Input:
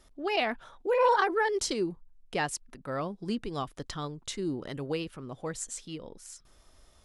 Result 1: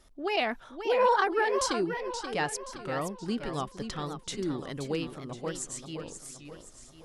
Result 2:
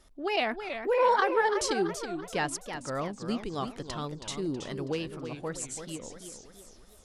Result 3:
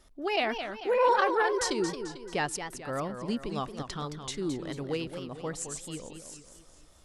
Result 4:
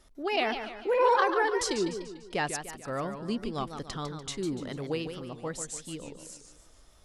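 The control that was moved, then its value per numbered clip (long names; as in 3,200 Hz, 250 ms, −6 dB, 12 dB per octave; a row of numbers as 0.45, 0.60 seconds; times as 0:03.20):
feedback echo with a swinging delay time, delay time: 525, 329, 220, 147 milliseconds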